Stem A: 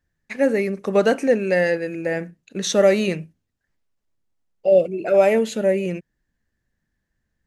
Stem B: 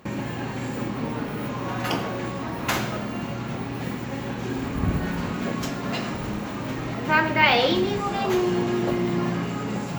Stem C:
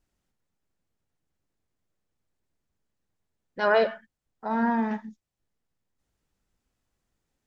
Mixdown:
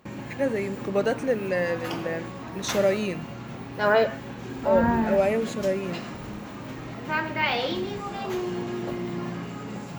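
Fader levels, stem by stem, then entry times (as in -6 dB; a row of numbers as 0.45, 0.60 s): -7.0, -7.0, +1.0 dB; 0.00, 0.00, 0.20 s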